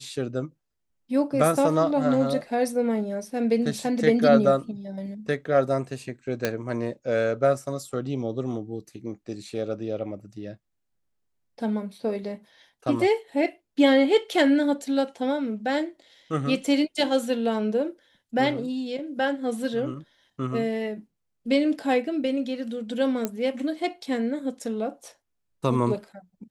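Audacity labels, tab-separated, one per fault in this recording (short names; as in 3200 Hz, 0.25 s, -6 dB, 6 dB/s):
6.450000	6.450000	pop -9 dBFS
23.250000	23.250000	pop -12 dBFS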